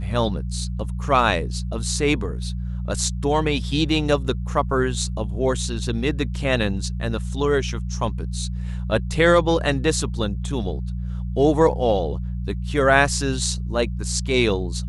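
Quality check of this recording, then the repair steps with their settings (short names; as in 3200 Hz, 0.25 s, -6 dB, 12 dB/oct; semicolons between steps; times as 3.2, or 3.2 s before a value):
hum 60 Hz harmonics 3 -27 dBFS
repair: de-hum 60 Hz, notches 3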